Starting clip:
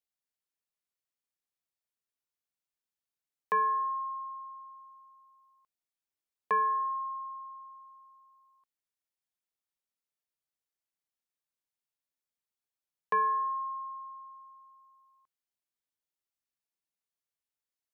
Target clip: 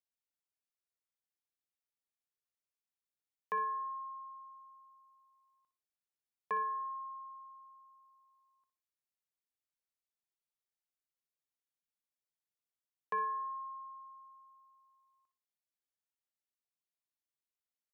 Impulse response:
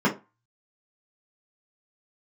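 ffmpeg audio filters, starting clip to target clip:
-af "aecho=1:1:61|122|183:0.282|0.0789|0.0221,volume=-7.5dB"

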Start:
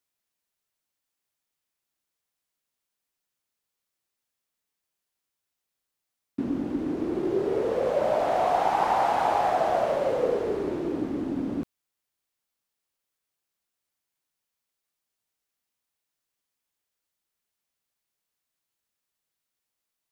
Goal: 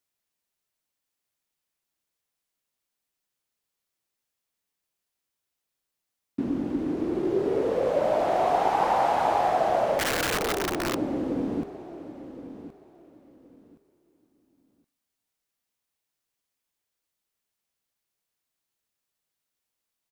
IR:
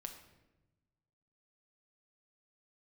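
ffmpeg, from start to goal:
-filter_complex "[0:a]aecho=1:1:1070|2140|3210:0.224|0.0515|0.0118,asplit=2[link_01][link_02];[1:a]atrim=start_sample=2205,lowpass=frequency=1500:width=0.5412,lowpass=frequency=1500:width=1.3066[link_03];[link_02][link_03]afir=irnorm=-1:irlink=0,volume=-14.5dB[link_04];[link_01][link_04]amix=inputs=2:normalize=0,asettb=1/sr,asplit=3[link_05][link_06][link_07];[link_05]atrim=end=9.994[link_08];[link_06]atrim=start=9.99:end=10.95,asetpts=PTS-STARTPTS,afade=type=in:duration=0.004:curve=qsin,afade=type=out:start_time=0.956:duration=0.004:curve=qsin,aeval=exprs='(mod(11.9*val(0)+1,2)-1)/11.9':channel_layout=same[link_09];[link_07]atrim=start=10.946[link_10];[link_08][link_09]acrossfade=duration=0.004:curve1=hsin:curve2=qsin[link_11];[link_11][link_10]acrossfade=duration=0.004:curve1=qsin:curve2=hsin"

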